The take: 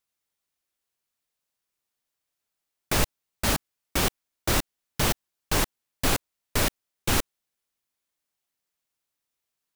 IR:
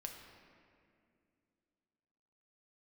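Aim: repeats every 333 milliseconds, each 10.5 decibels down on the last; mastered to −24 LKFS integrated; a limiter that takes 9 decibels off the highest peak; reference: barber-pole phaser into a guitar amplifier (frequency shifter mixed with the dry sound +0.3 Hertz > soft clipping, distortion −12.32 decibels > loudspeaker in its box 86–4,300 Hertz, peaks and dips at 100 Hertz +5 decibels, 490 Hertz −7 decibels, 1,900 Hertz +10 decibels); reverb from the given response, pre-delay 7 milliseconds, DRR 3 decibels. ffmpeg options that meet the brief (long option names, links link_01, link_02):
-filter_complex "[0:a]alimiter=limit=-19.5dB:level=0:latency=1,aecho=1:1:333|666|999:0.299|0.0896|0.0269,asplit=2[link_01][link_02];[1:a]atrim=start_sample=2205,adelay=7[link_03];[link_02][link_03]afir=irnorm=-1:irlink=0,volume=0dB[link_04];[link_01][link_04]amix=inputs=2:normalize=0,asplit=2[link_05][link_06];[link_06]afreqshift=0.3[link_07];[link_05][link_07]amix=inputs=2:normalize=1,asoftclip=threshold=-28.5dB,highpass=86,equalizer=frequency=100:width_type=q:width=4:gain=5,equalizer=frequency=490:width_type=q:width=4:gain=-7,equalizer=frequency=1900:width_type=q:width=4:gain=10,lowpass=frequency=4300:width=0.5412,lowpass=frequency=4300:width=1.3066,volume=14.5dB"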